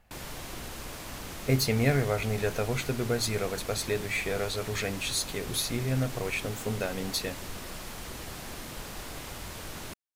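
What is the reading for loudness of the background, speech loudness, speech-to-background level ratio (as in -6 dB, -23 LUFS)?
-40.0 LUFS, -30.0 LUFS, 10.0 dB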